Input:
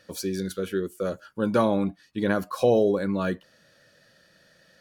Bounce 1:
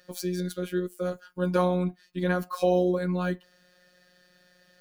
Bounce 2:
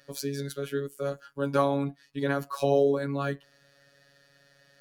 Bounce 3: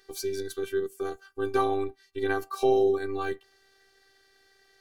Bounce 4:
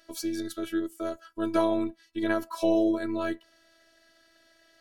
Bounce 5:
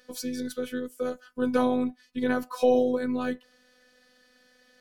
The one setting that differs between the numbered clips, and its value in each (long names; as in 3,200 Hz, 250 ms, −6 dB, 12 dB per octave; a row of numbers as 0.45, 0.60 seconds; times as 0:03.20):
phases set to zero, frequency: 180, 140, 390, 330, 250 Hertz